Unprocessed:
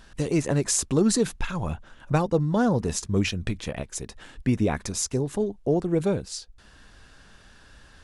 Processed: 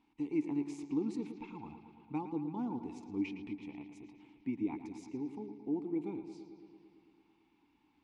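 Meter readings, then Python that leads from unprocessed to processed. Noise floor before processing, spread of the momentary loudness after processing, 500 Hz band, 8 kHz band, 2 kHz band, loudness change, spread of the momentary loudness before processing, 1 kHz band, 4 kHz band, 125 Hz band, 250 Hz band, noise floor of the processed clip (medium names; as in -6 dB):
-53 dBFS, 16 LU, -18.5 dB, under -30 dB, -19.0 dB, -13.5 dB, 11 LU, -14.5 dB, under -25 dB, -23.0 dB, -10.0 dB, -72 dBFS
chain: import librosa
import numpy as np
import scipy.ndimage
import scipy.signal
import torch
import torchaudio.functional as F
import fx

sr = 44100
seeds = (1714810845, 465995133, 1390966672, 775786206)

y = fx.vowel_filter(x, sr, vowel='u')
y = fx.echo_bbd(y, sr, ms=112, stages=4096, feedback_pct=73, wet_db=-11)
y = y * librosa.db_to_amplitude(-3.5)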